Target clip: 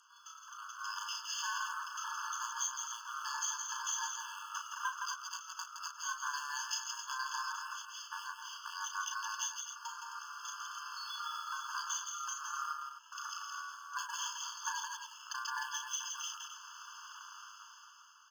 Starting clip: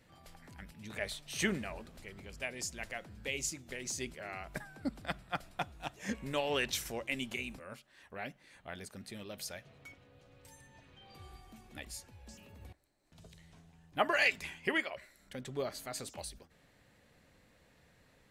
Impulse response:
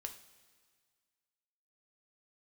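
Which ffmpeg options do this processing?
-filter_complex "[0:a]equalizer=f=770:w=2.2:g=5.5,aresample=11025,asoftclip=type=tanh:threshold=0.0473,aresample=44100,aexciter=amount=12.9:drive=5.7:freq=4100,dynaudnorm=f=260:g=9:m=6.31,aeval=exprs='val(0)*sin(2*PI*1300*n/s)':c=same,equalizer=f=2900:w=1:g=-12,asplit=2[s0][s1];[s1]acrusher=bits=2:mode=log:mix=0:aa=0.000001,volume=0.501[s2];[s0][s2]amix=inputs=2:normalize=0,acompressor=threshold=0.0112:ratio=4,aecho=1:1:34.99|166.2|262.4:0.501|0.562|0.355,afftfilt=real='re*eq(mod(floor(b*sr/1024/870),2),1)':imag='im*eq(mod(floor(b*sr/1024/870),2),1)':win_size=1024:overlap=0.75,volume=1.26"

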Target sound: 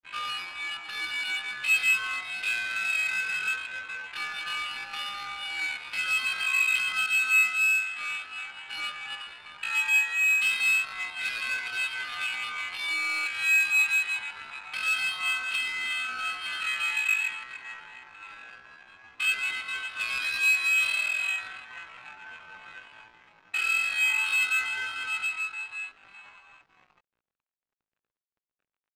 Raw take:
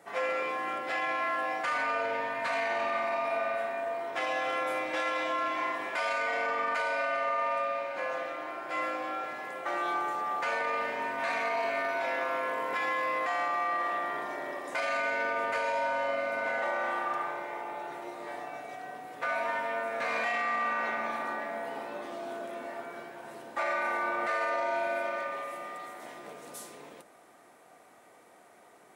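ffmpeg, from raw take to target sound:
-af "equalizer=f=1200:t=o:w=0.32:g=13,highpass=f=280:t=q:w=0.5412,highpass=f=280:t=q:w=1.307,lowpass=f=2800:t=q:w=0.5176,lowpass=f=2800:t=q:w=0.7071,lowpass=f=2800:t=q:w=1.932,afreqshift=88,flanger=delay=10:depth=9.4:regen=5:speed=0.19:shape=sinusoidal,asetrate=88200,aresample=44100,atempo=0.5,aeval=exprs='sgn(val(0))*max(abs(val(0))-0.00376,0)':c=same,adynamicsmooth=sensitivity=5:basefreq=2000"

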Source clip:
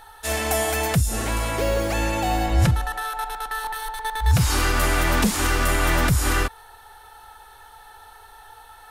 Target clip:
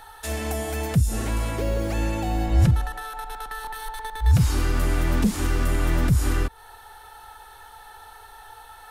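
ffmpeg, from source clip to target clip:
-filter_complex "[0:a]acrossover=split=390[s0][s1];[s1]acompressor=threshold=0.02:ratio=4[s2];[s0][s2]amix=inputs=2:normalize=0,volume=1.12"

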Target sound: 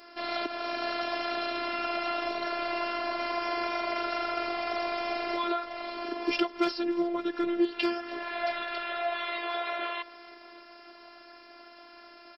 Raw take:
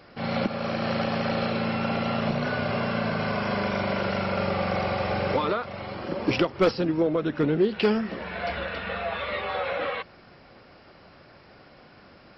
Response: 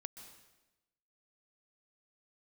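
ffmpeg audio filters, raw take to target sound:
-filter_complex "[0:a]highpass=f=180:p=1,bass=f=250:g=-9,treble=f=4000:g=4,asplit=2[s0][s1];[s1]acompressor=threshold=0.0178:ratio=6,volume=1.26[s2];[s0][s2]amix=inputs=2:normalize=0,asplit=5[s3][s4][s5][s6][s7];[s4]adelay=289,afreqshift=-54,volume=0.0841[s8];[s5]adelay=578,afreqshift=-108,volume=0.049[s9];[s6]adelay=867,afreqshift=-162,volume=0.0282[s10];[s7]adelay=1156,afreqshift=-216,volume=0.0164[s11];[s3][s8][s9][s10][s11]amix=inputs=5:normalize=0,afftfilt=real='hypot(re,im)*cos(PI*b)':imag='0':win_size=512:overlap=0.75,volume=0.794"

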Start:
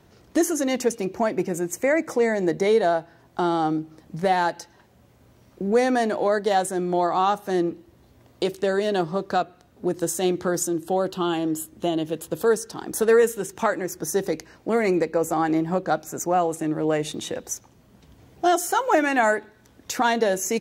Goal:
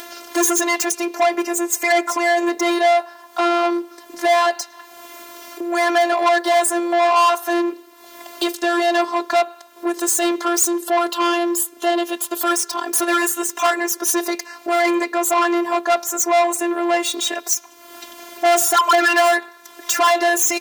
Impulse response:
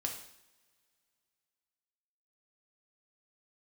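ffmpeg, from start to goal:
-filter_complex "[0:a]afftfilt=real='hypot(re,im)*cos(PI*b)':imag='0':win_size=512:overlap=0.75,adynamicequalizer=threshold=0.01:dfrequency=1000:dqfactor=2.1:tfrequency=1000:tqfactor=2.1:attack=5:release=100:ratio=0.375:range=3.5:mode=boostabove:tftype=bell,acompressor=mode=upward:threshold=0.0158:ratio=2.5,asplit=2[s0][s1];[s1]highpass=f=720:p=1,volume=15.8,asoftclip=type=tanh:threshold=0.531[s2];[s0][s2]amix=inputs=2:normalize=0,lowpass=f=1900:p=1,volume=0.501,aemphasis=mode=production:type=riaa"

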